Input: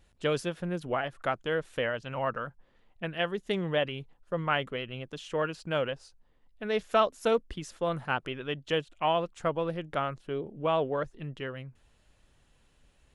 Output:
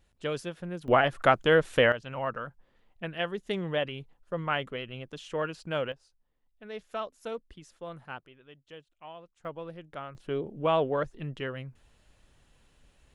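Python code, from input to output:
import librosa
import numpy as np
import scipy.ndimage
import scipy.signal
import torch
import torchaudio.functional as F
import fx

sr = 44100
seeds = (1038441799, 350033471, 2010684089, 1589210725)

y = fx.gain(x, sr, db=fx.steps((0.0, -4.0), (0.88, 8.5), (1.92, -1.5), (5.92, -11.0), (8.23, -19.0), (9.45, -9.5), (10.15, 2.0)))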